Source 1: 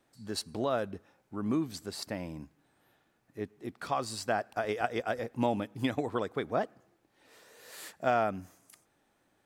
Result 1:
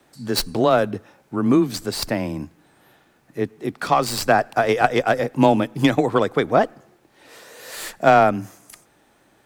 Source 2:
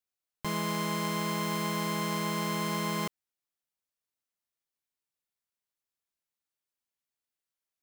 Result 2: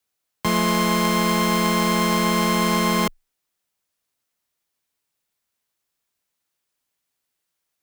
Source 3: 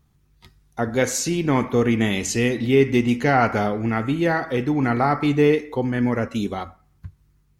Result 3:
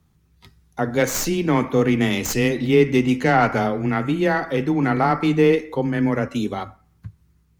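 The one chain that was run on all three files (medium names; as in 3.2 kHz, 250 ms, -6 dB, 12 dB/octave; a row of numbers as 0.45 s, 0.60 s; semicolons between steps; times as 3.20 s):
tracing distortion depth 0.064 ms; frequency shift +14 Hz; normalise loudness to -20 LUFS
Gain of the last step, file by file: +14.0 dB, +12.0 dB, +1.0 dB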